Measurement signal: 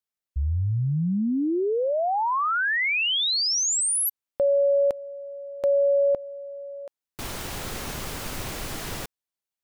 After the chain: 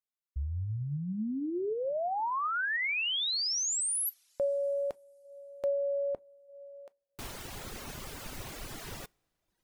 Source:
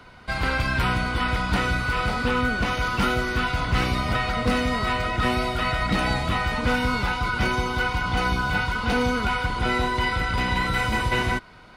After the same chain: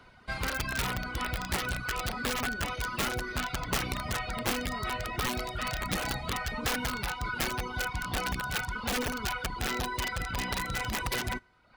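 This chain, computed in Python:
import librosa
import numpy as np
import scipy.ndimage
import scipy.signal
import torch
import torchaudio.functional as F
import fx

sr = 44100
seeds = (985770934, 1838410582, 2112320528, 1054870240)

y = fx.rev_double_slope(x, sr, seeds[0], early_s=0.32, late_s=3.2, knee_db=-19, drr_db=15.0)
y = (np.mod(10.0 ** (15.0 / 20.0) * y + 1.0, 2.0) - 1.0) / 10.0 ** (15.0 / 20.0)
y = fx.dereverb_blind(y, sr, rt60_s=0.81)
y = F.gain(torch.from_numpy(y), -7.5).numpy()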